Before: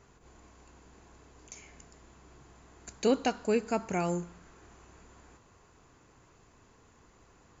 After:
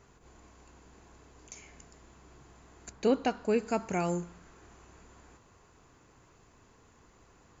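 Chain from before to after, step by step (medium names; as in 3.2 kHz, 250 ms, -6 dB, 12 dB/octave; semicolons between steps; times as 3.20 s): 2.89–3.57 s: low-pass 2.2 kHz -> 3.7 kHz 6 dB/octave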